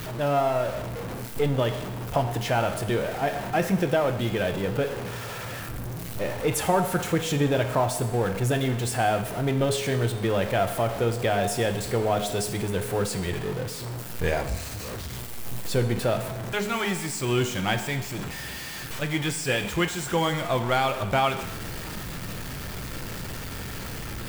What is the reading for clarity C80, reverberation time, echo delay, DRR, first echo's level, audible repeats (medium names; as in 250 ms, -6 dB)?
12.0 dB, 1.1 s, no echo, 7.0 dB, no echo, no echo